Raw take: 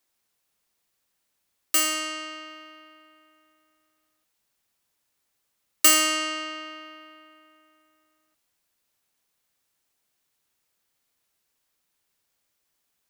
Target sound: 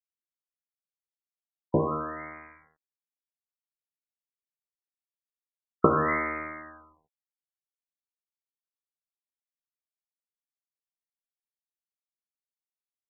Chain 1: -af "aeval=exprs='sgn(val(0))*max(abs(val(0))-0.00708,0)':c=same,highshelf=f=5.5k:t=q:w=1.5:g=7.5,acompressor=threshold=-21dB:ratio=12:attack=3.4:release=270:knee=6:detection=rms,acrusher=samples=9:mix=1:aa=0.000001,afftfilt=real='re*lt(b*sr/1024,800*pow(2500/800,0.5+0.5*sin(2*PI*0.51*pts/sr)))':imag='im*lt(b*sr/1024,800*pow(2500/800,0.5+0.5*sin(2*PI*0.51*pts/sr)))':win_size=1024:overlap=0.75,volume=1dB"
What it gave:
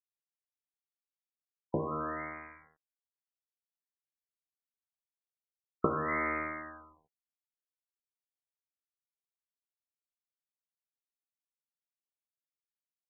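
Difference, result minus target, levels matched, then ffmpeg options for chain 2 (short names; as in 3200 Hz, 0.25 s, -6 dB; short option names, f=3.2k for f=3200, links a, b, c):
compressor: peak gain reduction +9 dB
-af "aeval=exprs='sgn(val(0))*max(abs(val(0))-0.00708,0)':c=same,highshelf=f=5.5k:t=q:w=1.5:g=7.5,acompressor=threshold=-11dB:ratio=12:attack=3.4:release=270:knee=6:detection=rms,acrusher=samples=9:mix=1:aa=0.000001,afftfilt=real='re*lt(b*sr/1024,800*pow(2500/800,0.5+0.5*sin(2*PI*0.51*pts/sr)))':imag='im*lt(b*sr/1024,800*pow(2500/800,0.5+0.5*sin(2*PI*0.51*pts/sr)))':win_size=1024:overlap=0.75,volume=1dB"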